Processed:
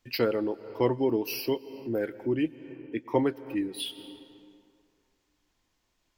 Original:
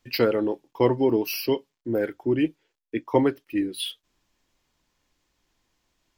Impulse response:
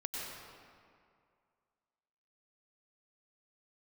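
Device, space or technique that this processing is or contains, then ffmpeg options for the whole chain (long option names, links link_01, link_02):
ducked reverb: -filter_complex "[0:a]asplit=3[link_01][link_02][link_03];[1:a]atrim=start_sample=2205[link_04];[link_02][link_04]afir=irnorm=-1:irlink=0[link_05];[link_03]apad=whole_len=272499[link_06];[link_05][link_06]sidechaincompress=threshold=-38dB:ratio=8:attack=47:release=199,volume=-8.5dB[link_07];[link_01][link_07]amix=inputs=2:normalize=0,volume=-5dB"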